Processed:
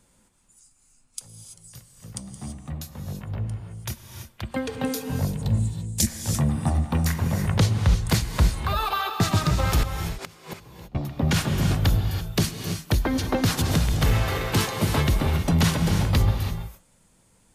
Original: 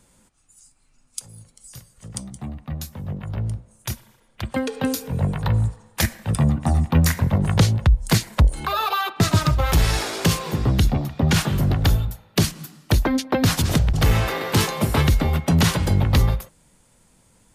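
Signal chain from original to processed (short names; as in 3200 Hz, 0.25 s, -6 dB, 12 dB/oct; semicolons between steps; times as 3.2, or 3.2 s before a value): 5.33–6.07 EQ curve 140 Hz 0 dB, 220 Hz +6 dB, 1300 Hz -19 dB, 7900 Hz +12 dB, 13000 Hz 0 dB; 6.79–7.44 compressor, threshold -16 dBFS, peak gain reduction 5 dB; 9.83–10.95 flipped gate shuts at -18 dBFS, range -27 dB; non-linear reverb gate 0.36 s rising, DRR 5.5 dB; gain -4 dB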